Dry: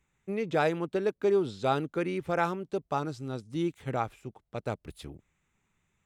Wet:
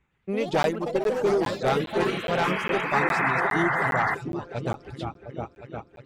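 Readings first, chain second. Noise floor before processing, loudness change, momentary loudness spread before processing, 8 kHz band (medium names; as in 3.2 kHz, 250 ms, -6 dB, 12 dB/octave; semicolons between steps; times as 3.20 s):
-78 dBFS, +6.0 dB, 13 LU, +8.0 dB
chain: delay with an opening low-pass 355 ms, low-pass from 200 Hz, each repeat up 2 oct, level -3 dB; reverb removal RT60 1.9 s; treble shelf 5.5 kHz +5.5 dB; Chebyshev shaper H 5 -8 dB, 8 -25 dB, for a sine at -11 dBFS; painted sound noise, 2.93–4.15 s, 640–2100 Hz -21 dBFS; level-controlled noise filter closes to 2.5 kHz, open at -17 dBFS; ever faster or slower copies 111 ms, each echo +4 st, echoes 3, each echo -6 dB; crackling interface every 0.41 s, samples 512, zero, from 0.63 s; trim -4.5 dB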